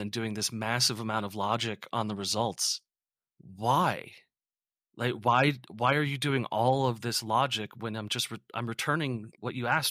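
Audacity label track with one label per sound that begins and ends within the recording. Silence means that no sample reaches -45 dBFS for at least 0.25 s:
3.410000	4.180000	sound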